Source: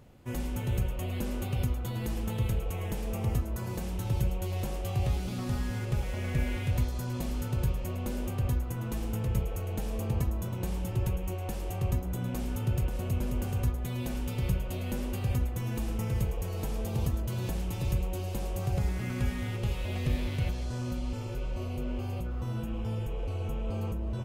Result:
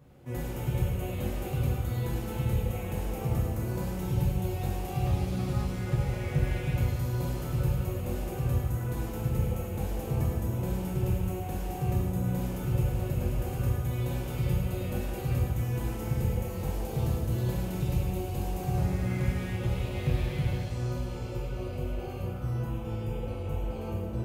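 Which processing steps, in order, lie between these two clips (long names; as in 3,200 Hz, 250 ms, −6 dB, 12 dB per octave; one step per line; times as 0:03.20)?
high-pass filter 57 Hz
parametric band 5,400 Hz −4.5 dB 2.9 octaves
convolution reverb, pre-delay 3 ms, DRR −6 dB
level −4 dB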